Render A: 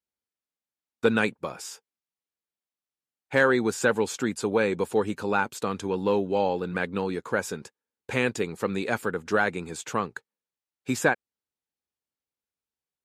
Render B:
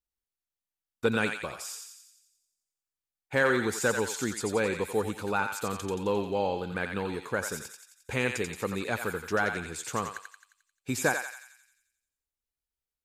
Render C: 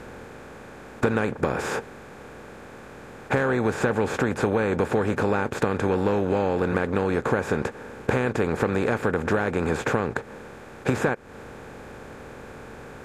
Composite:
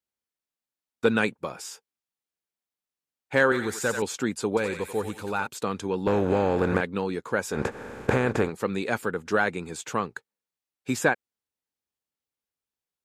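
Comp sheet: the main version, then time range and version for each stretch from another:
A
3.52–4.02 from B
4.57–5.47 from B
6.07–6.81 from C
7.55–8.48 from C, crossfade 0.10 s

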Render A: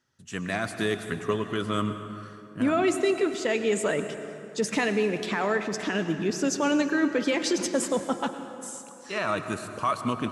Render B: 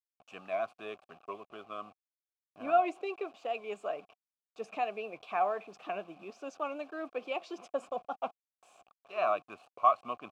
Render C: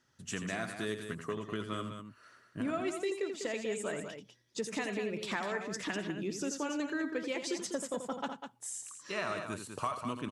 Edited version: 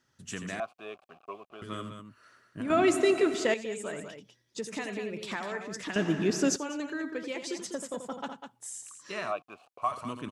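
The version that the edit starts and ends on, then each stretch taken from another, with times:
C
0.6–1.62 from B
2.7–3.54 from A
5.96–6.56 from A
9.3–9.86 from B, crossfade 0.10 s

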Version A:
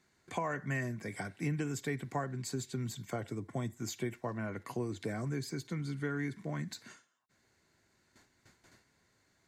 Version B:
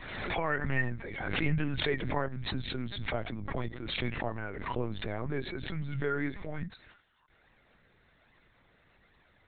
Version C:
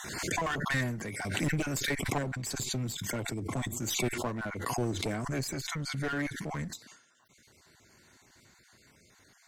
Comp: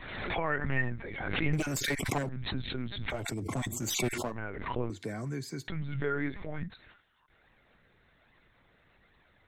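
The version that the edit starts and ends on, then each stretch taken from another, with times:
B
1.53–2.29 from C
3.17–4.3 from C, crossfade 0.16 s
4.9–5.68 from A

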